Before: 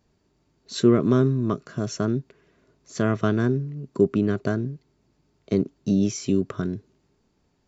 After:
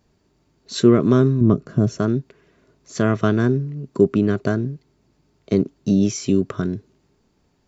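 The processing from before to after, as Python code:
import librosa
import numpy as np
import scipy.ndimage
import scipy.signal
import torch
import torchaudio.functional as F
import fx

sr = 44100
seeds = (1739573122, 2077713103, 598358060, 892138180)

y = fx.tilt_shelf(x, sr, db=8.0, hz=650.0, at=(1.41, 1.99))
y = y * 10.0 ** (4.0 / 20.0)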